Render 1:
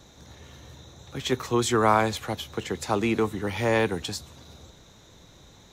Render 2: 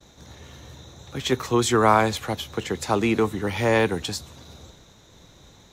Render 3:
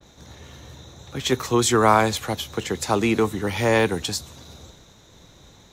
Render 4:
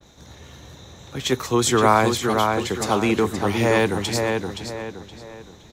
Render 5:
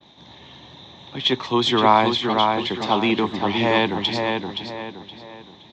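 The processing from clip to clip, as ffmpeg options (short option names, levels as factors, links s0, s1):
-af "agate=range=0.0224:threshold=0.00355:ratio=3:detection=peak,volume=1.41"
-af "adynamicequalizer=threshold=0.01:dfrequency=4100:dqfactor=0.7:tfrequency=4100:tqfactor=0.7:attack=5:release=100:ratio=0.375:range=2:mode=boostabove:tftype=highshelf,volume=1.12"
-filter_complex "[0:a]asplit=2[s0][s1];[s1]adelay=521,lowpass=f=3500:p=1,volume=0.631,asplit=2[s2][s3];[s3]adelay=521,lowpass=f=3500:p=1,volume=0.38,asplit=2[s4][s5];[s5]adelay=521,lowpass=f=3500:p=1,volume=0.38,asplit=2[s6][s7];[s7]adelay=521,lowpass=f=3500:p=1,volume=0.38,asplit=2[s8][s9];[s9]adelay=521,lowpass=f=3500:p=1,volume=0.38[s10];[s0][s2][s4][s6][s8][s10]amix=inputs=6:normalize=0"
-af "highpass=160,equalizer=f=470:t=q:w=4:g=-8,equalizer=f=930:t=q:w=4:g=5,equalizer=f=1400:t=q:w=4:g=-9,equalizer=f=3400:t=q:w=4:g=8,lowpass=f=4200:w=0.5412,lowpass=f=4200:w=1.3066,volume=1.19"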